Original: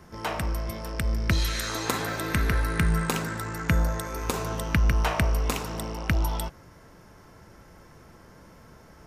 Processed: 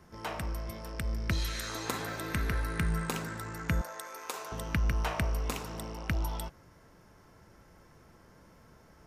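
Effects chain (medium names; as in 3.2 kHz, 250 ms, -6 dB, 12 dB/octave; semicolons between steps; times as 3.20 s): 3.81–4.52 s: high-pass 580 Hz 12 dB/octave; trim -7 dB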